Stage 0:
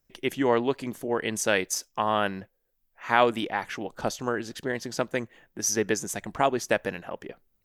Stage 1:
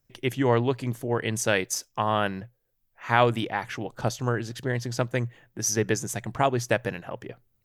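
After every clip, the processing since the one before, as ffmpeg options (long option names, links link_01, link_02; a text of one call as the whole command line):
ffmpeg -i in.wav -af "equalizer=frequency=120:width=3.5:gain=15" out.wav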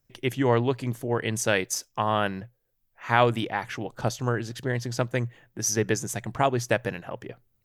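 ffmpeg -i in.wav -af anull out.wav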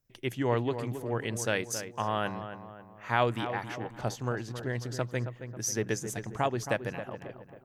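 ffmpeg -i in.wav -filter_complex "[0:a]asplit=2[link_01][link_02];[link_02]adelay=271,lowpass=frequency=1900:poles=1,volume=-9.5dB,asplit=2[link_03][link_04];[link_04]adelay=271,lowpass=frequency=1900:poles=1,volume=0.48,asplit=2[link_05][link_06];[link_06]adelay=271,lowpass=frequency=1900:poles=1,volume=0.48,asplit=2[link_07][link_08];[link_08]adelay=271,lowpass=frequency=1900:poles=1,volume=0.48,asplit=2[link_09][link_10];[link_10]adelay=271,lowpass=frequency=1900:poles=1,volume=0.48[link_11];[link_01][link_03][link_05][link_07][link_09][link_11]amix=inputs=6:normalize=0,volume=-6dB" out.wav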